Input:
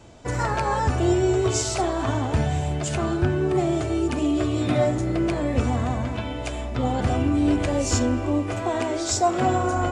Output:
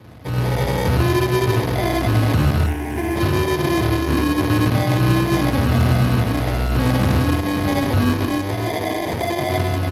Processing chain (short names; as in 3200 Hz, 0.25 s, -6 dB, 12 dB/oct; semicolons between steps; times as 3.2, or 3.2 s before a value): HPF 40 Hz 12 dB/oct; 8.25–9.58 bell 180 Hz -14.5 dB 1.5 oct; overloaded stage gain 28 dB; AGC gain up to 5.5 dB; low shelf 250 Hz +11.5 dB; echo 98 ms -3.5 dB; sample-and-hold 32×; 2.66–3.16 fixed phaser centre 820 Hz, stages 8; Speex 28 kbps 32000 Hz